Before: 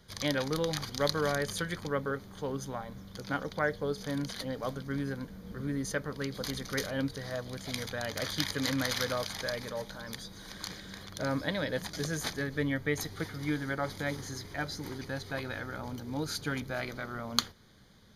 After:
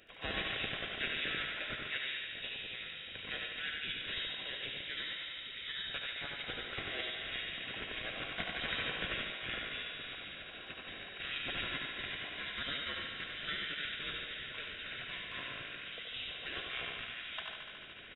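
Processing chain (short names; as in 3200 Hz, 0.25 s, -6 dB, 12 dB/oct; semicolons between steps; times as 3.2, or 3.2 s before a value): HPF 69 Hz 12 dB/oct; notches 50/100/150/200/250 Hz; inverted band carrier 3600 Hz; in parallel at +2.5 dB: compressor, threshold -44 dBFS, peak gain reduction 19 dB; on the sum: spectral gate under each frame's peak -15 dB weak; notch 1200 Hz, Q 6.8; echo 92 ms -4.5 dB; reverse; upward compressor, threshold -46 dBFS; reverse; thinning echo 73 ms, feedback 85%, high-pass 310 Hz, level -7 dB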